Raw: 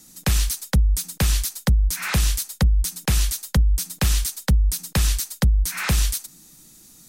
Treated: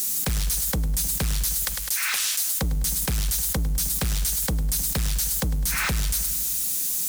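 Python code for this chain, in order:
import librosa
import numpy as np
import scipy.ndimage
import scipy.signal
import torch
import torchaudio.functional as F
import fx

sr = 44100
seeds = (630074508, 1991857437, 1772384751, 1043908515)

y = x + 0.5 * 10.0 ** (-28.5 / 20.0) * np.diff(np.sign(x), prepend=np.sign(x[:1]))
y = fx.bessel_highpass(y, sr, hz=1700.0, order=2, at=(1.57, 2.45))
y = np.clip(10.0 ** (20.0 / 20.0) * y, -1.0, 1.0) / 10.0 ** (20.0 / 20.0)
y = fx.echo_feedback(y, sr, ms=103, feedback_pct=53, wet_db=-13.5)
y = fx.env_flatten(y, sr, amount_pct=70)
y = F.gain(torch.from_numpy(y), -2.5).numpy()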